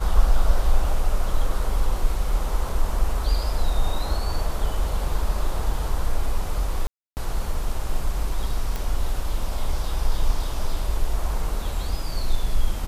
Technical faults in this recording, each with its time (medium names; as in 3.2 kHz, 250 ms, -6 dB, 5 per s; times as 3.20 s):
6.87–7.17 s: dropout 299 ms
8.76 s: pop